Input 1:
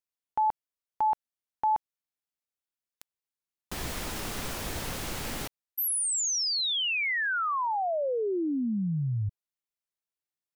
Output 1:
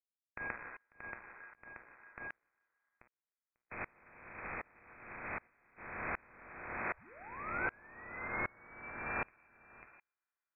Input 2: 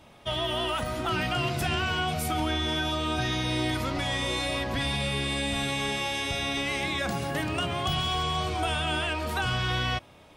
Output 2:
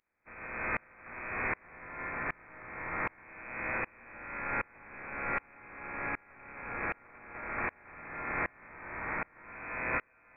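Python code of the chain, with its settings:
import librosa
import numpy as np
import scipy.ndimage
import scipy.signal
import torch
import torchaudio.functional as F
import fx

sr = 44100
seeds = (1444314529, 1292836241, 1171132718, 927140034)

p1 = fx.spec_flatten(x, sr, power=0.15)
p2 = fx.dynamic_eq(p1, sr, hz=1000.0, q=0.77, threshold_db=-43.0, ratio=4.0, max_db=3)
p3 = p2 + fx.echo_single(p2, sr, ms=544, db=-14.0, dry=0)
p4 = fx.rev_fdn(p3, sr, rt60_s=1.3, lf_ratio=0.8, hf_ratio=0.5, size_ms=96.0, drr_db=5.0)
p5 = fx.freq_invert(p4, sr, carrier_hz=2500)
p6 = fx.tremolo_decay(p5, sr, direction='swelling', hz=1.3, depth_db=31)
y = p6 * librosa.db_to_amplitude(1.0)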